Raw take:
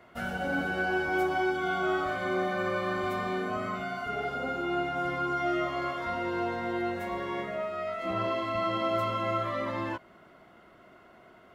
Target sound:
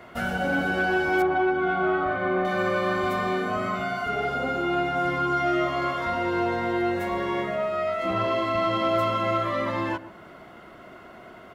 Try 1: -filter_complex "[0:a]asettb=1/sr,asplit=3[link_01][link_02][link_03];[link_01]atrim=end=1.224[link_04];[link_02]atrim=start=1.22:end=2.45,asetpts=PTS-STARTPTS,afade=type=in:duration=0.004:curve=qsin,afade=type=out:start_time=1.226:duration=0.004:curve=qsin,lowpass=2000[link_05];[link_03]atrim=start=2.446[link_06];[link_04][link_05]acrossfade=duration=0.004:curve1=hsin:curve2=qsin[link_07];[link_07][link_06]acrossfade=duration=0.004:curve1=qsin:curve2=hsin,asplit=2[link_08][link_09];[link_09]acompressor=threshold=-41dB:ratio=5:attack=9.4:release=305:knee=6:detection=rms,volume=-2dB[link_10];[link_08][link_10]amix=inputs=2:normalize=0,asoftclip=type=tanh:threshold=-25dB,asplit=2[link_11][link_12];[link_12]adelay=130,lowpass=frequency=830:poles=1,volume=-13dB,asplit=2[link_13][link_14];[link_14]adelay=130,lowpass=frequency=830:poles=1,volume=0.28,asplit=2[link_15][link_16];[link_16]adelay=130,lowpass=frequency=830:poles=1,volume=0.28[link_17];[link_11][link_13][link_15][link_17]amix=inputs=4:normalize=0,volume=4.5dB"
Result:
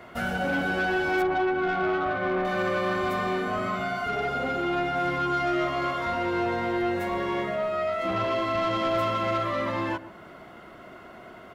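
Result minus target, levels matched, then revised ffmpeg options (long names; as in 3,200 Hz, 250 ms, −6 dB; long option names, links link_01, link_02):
soft clipping: distortion +10 dB
-filter_complex "[0:a]asettb=1/sr,asplit=3[link_01][link_02][link_03];[link_01]atrim=end=1.224[link_04];[link_02]atrim=start=1.22:end=2.45,asetpts=PTS-STARTPTS,afade=type=in:duration=0.004:curve=qsin,afade=type=out:start_time=1.226:duration=0.004:curve=qsin,lowpass=2000[link_05];[link_03]atrim=start=2.446[link_06];[link_04][link_05]acrossfade=duration=0.004:curve1=hsin:curve2=qsin[link_07];[link_07][link_06]acrossfade=duration=0.004:curve1=qsin:curve2=hsin,asplit=2[link_08][link_09];[link_09]acompressor=threshold=-41dB:ratio=5:attack=9.4:release=305:knee=6:detection=rms,volume=-2dB[link_10];[link_08][link_10]amix=inputs=2:normalize=0,asoftclip=type=tanh:threshold=-18dB,asplit=2[link_11][link_12];[link_12]adelay=130,lowpass=frequency=830:poles=1,volume=-13dB,asplit=2[link_13][link_14];[link_14]adelay=130,lowpass=frequency=830:poles=1,volume=0.28,asplit=2[link_15][link_16];[link_16]adelay=130,lowpass=frequency=830:poles=1,volume=0.28[link_17];[link_11][link_13][link_15][link_17]amix=inputs=4:normalize=0,volume=4.5dB"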